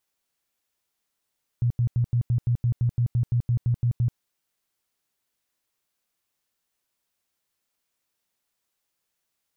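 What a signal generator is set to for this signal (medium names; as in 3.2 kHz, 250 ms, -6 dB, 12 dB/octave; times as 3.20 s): tone bursts 120 Hz, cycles 10, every 0.17 s, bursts 15, -18.5 dBFS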